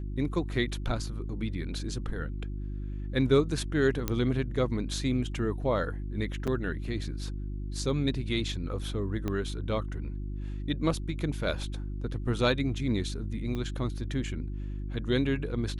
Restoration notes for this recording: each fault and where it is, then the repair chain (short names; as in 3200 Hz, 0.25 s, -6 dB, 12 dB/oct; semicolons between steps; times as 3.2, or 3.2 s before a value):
hum 50 Hz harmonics 7 -35 dBFS
4.08 pop -14 dBFS
6.47–6.48 gap 6.2 ms
9.28 pop -19 dBFS
13.55 pop -23 dBFS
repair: de-click; de-hum 50 Hz, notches 7; interpolate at 6.47, 6.2 ms